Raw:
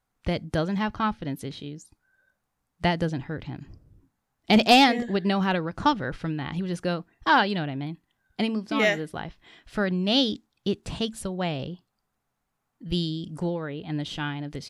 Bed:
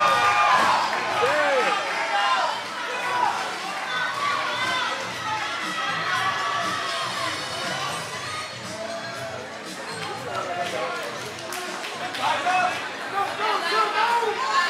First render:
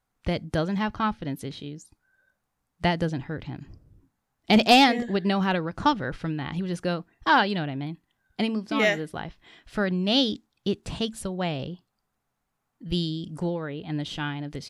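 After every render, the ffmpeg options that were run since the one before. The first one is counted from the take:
ffmpeg -i in.wav -af anull out.wav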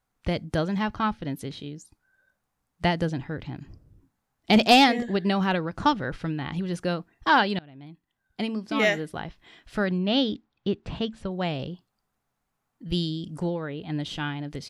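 ffmpeg -i in.wav -filter_complex "[0:a]asettb=1/sr,asplit=3[link_01][link_02][link_03];[link_01]atrim=end=9.984[link_04];[link_02]atrim=start=9.98:end=11.31,asetpts=PTS-STARTPTS,afade=type=in:duration=0.004:curve=qsin,afade=type=out:start_time=1.326:duration=0.004:curve=qsin,lowpass=3100[link_05];[link_03]atrim=start=11.306[link_06];[link_04][link_05]acrossfade=duration=0.004:curve1=hsin:curve2=qsin[link_07];[link_07][link_06]acrossfade=duration=0.004:curve1=qsin:curve2=hsin,asplit=2[link_08][link_09];[link_08]atrim=end=7.59,asetpts=PTS-STARTPTS,afade=type=out:start_time=7.586:duration=0.004:curve=hsin:silence=0.0668344[link_10];[link_09]atrim=start=7.59,asetpts=PTS-STARTPTS,afade=type=in:duration=1.26:silence=0.0668344[link_11];[link_10][link_11]concat=n=2:v=0:a=1" out.wav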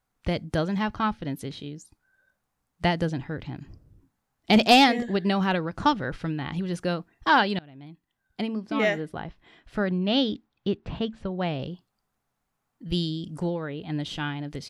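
ffmpeg -i in.wav -filter_complex "[0:a]asettb=1/sr,asplit=3[link_01][link_02][link_03];[link_01]atrim=end=8.414[link_04];[link_02]atrim=start=8.41:end=10.02,asetpts=PTS-STARTPTS,afade=type=in:duration=0.004:curve=qsin,afade=type=out:start_time=1.606:duration=0.004:curve=qsin,highshelf=frequency=2800:gain=-9[link_05];[link_03]atrim=start=10.016[link_06];[link_04][link_05]acrossfade=duration=0.004:curve1=hsin:curve2=qsin[link_07];[link_07][link_06]acrossfade=duration=0.004:curve1=qsin:curve2=hsin,asettb=1/sr,asplit=3[link_08][link_09][link_10];[link_08]atrim=end=10.774[link_11];[link_09]atrim=start=10.77:end=11.63,asetpts=PTS-STARTPTS,afade=type=in:duration=0.004:curve=qsin,afade=type=out:start_time=0.856:duration=0.004:curve=qsin,aemphasis=mode=reproduction:type=50fm[link_12];[link_10]atrim=start=11.626[link_13];[link_11][link_12]acrossfade=duration=0.004:curve1=hsin:curve2=qsin[link_14];[link_14][link_13]acrossfade=duration=0.004:curve1=qsin:curve2=hsin" out.wav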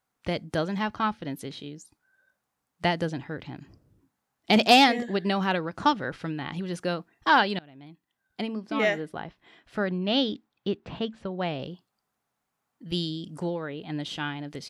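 ffmpeg -i in.wav -af "highpass=frequency=210:poles=1" out.wav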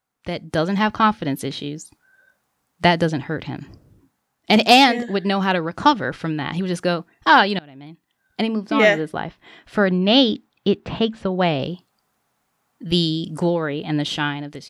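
ffmpeg -i in.wav -af "dynaudnorm=framelen=230:gausssize=5:maxgain=11dB" out.wav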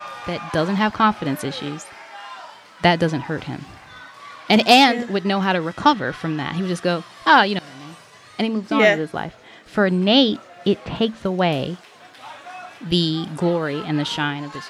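ffmpeg -i in.wav -i bed.wav -filter_complex "[1:a]volume=-15dB[link_01];[0:a][link_01]amix=inputs=2:normalize=0" out.wav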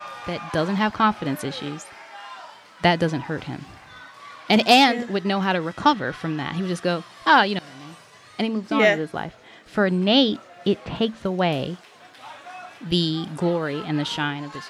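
ffmpeg -i in.wav -af "volume=-2.5dB" out.wav

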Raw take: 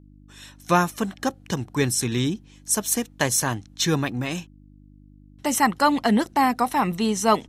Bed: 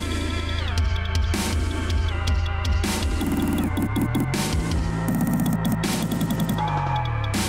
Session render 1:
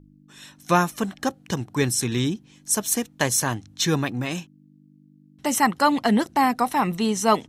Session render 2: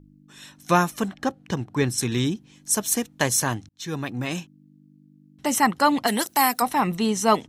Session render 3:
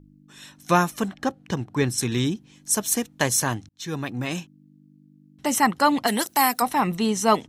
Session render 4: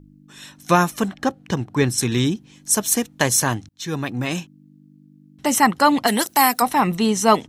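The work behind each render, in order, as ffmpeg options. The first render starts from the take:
ffmpeg -i in.wav -af "bandreject=frequency=50:width_type=h:width=4,bandreject=frequency=100:width_type=h:width=4" out.wav
ffmpeg -i in.wav -filter_complex "[0:a]asettb=1/sr,asplit=3[link_01][link_02][link_03];[link_01]atrim=end=1.084[link_04];[link_02]atrim=start=1.08:end=1.98,asetpts=PTS-STARTPTS,afade=type=in:duration=0.004:curve=qsin,afade=type=out:start_time=0.896:duration=0.004:curve=qsin,highshelf=frequency=5200:gain=-10.5[link_05];[link_03]atrim=start=1.976[link_06];[link_04][link_05]acrossfade=duration=0.004:curve1=hsin:curve2=qsin[link_07];[link_07][link_06]acrossfade=duration=0.004:curve1=qsin:curve2=hsin,asplit=3[link_08][link_09][link_10];[link_08]afade=type=out:start_time=6.06:duration=0.02[link_11];[link_09]aemphasis=mode=production:type=riaa,afade=type=in:start_time=6.06:duration=0.02,afade=type=out:start_time=6.61:duration=0.02[link_12];[link_10]afade=type=in:start_time=6.61:duration=0.02[link_13];[link_11][link_12][link_13]amix=inputs=3:normalize=0,asplit=2[link_14][link_15];[link_14]atrim=end=3.69,asetpts=PTS-STARTPTS,afade=type=out:start_time=3.686:duration=0.004:curve=hsin[link_16];[link_15]atrim=start=3.69,asetpts=PTS-STARTPTS,afade=type=in:duration=0.6[link_17];[link_16][link_17]concat=n=2:v=0:a=1" out.wav
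ffmpeg -i in.wav -af anull out.wav
ffmpeg -i in.wav -af "volume=4dB,alimiter=limit=-3dB:level=0:latency=1" out.wav

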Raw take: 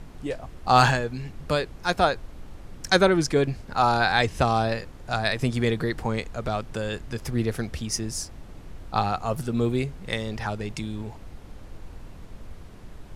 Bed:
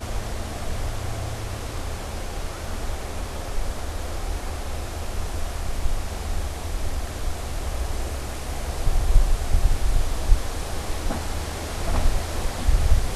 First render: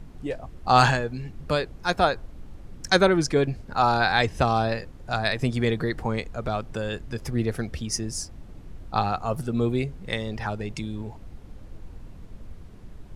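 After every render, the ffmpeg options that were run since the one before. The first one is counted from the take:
ffmpeg -i in.wav -af "afftdn=noise_reduction=6:noise_floor=-44" out.wav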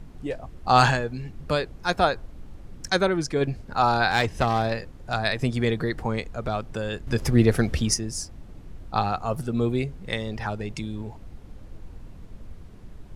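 ffmpeg -i in.wav -filter_complex "[0:a]asettb=1/sr,asplit=3[link_01][link_02][link_03];[link_01]atrim=end=4.104[link_04];[link_02]atrim=start=4.1:end=5.14,asetpts=PTS-STARTPTS,afade=type=in:duration=0.004:curve=qsin,afade=type=out:start_time=1.036:duration=0.004:curve=qsin,aeval=exprs='clip(val(0),-1,0.0668)':channel_layout=same[link_05];[link_03]atrim=start=5.136[link_06];[link_04][link_05]acrossfade=duration=0.004:curve1=hsin:curve2=qsin[link_07];[link_07][link_06]acrossfade=duration=0.004:curve1=qsin:curve2=hsin,asplit=5[link_08][link_09][link_10][link_11][link_12];[link_08]atrim=end=2.892[link_13];[link_09]atrim=start=2.888:end=3.412,asetpts=PTS-STARTPTS,volume=-3.5dB[link_14];[link_10]atrim=start=3.408:end=7.072[link_15];[link_11]atrim=start=7.068:end=7.942,asetpts=PTS-STARTPTS,volume=7.5dB[link_16];[link_12]atrim=start=7.938[link_17];[link_13][link_14]acrossfade=duration=0.004:curve1=hsin:curve2=hsin[link_18];[link_18][link_15]acrossfade=duration=0.004:curve1=hsin:curve2=hsin[link_19];[link_19][link_16]acrossfade=duration=0.004:curve1=hsin:curve2=hsin[link_20];[link_20][link_17]acrossfade=duration=0.004:curve1=hsin:curve2=hsin" out.wav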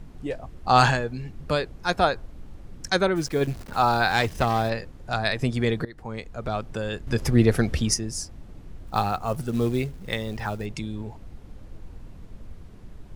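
ffmpeg -i in.wav -filter_complex "[0:a]asplit=3[link_01][link_02][link_03];[link_01]afade=type=out:start_time=3.15:duration=0.02[link_04];[link_02]acrusher=bits=8:dc=4:mix=0:aa=0.000001,afade=type=in:start_time=3.15:duration=0.02,afade=type=out:start_time=4.68:duration=0.02[link_05];[link_03]afade=type=in:start_time=4.68:duration=0.02[link_06];[link_04][link_05][link_06]amix=inputs=3:normalize=0,asettb=1/sr,asplit=3[link_07][link_08][link_09];[link_07]atrim=end=8.874[link_10];[link_08]atrim=start=8.87:end=10.66,asetpts=PTS-STARTPTS,afade=type=in:duration=0.004:curve=qsin,afade=type=out:start_time=1.786:duration=0.004:curve=qsin,acrusher=bits=6:mode=log:mix=0:aa=0.000001[link_11];[link_09]atrim=start=10.656[link_12];[link_10][link_11]acrossfade=duration=0.004:curve1=hsin:curve2=qsin[link_13];[link_13][link_12]acrossfade=duration=0.004:curve1=qsin:curve2=hsin,asplit=2[link_14][link_15];[link_14]atrim=end=5.85,asetpts=PTS-STARTPTS,afade=type=out:start_time=5.846:duration=0.004:curve=hsin:silence=0.105925[link_16];[link_15]atrim=start=5.85,asetpts=PTS-STARTPTS,afade=type=in:duration=0.73:silence=0.105925[link_17];[link_16][link_17]concat=n=2:v=0:a=1" out.wav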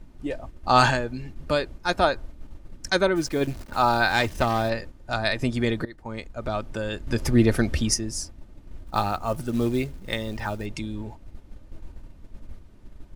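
ffmpeg -i in.wav -af "agate=range=-6dB:threshold=-38dB:ratio=16:detection=peak,aecho=1:1:3.3:0.34" out.wav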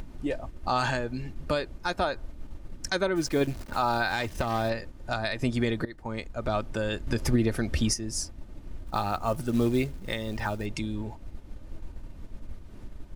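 ffmpeg -i in.wav -af "alimiter=limit=-15dB:level=0:latency=1:release=253,acompressor=mode=upward:threshold=-32dB:ratio=2.5" out.wav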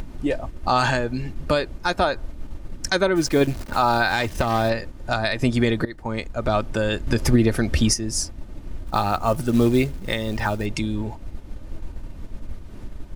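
ffmpeg -i in.wav -af "volume=7dB" out.wav

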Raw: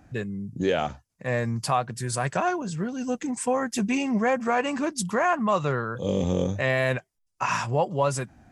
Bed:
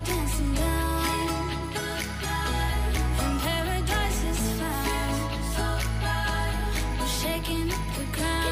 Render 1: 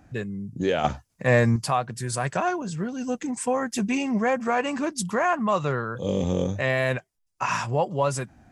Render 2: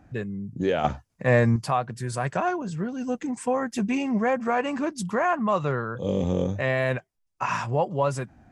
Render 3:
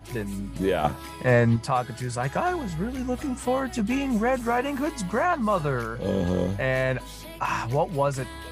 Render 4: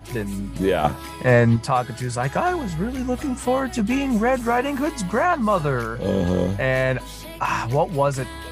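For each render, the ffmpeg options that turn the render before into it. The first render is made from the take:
ffmpeg -i in.wav -filter_complex "[0:a]asplit=3[link_01][link_02][link_03];[link_01]atrim=end=0.842[link_04];[link_02]atrim=start=0.838:end=1.562,asetpts=PTS-STARTPTS,volume=7.5dB[link_05];[link_03]atrim=start=1.558[link_06];[link_04][link_05]acrossfade=duration=0.004:curve1=hsin:curve2=hsin[link_07];[link_07][link_06]acrossfade=duration=0.004:curve1=hsin:curve2=hsin" out.wav
ffmpeg -i in.wav -af "highshelf=frequency=3600:gain=-8.5" out.wav
ffmpeg -i in.wav -i bed.wav -filter_complex "[1:a]volume=-13dB[link_01];[0:a][link_01]amix=inputs=2:normalize=0" out.wav
ffmpeg -i in.wav -af "volume=4dB" out.wav

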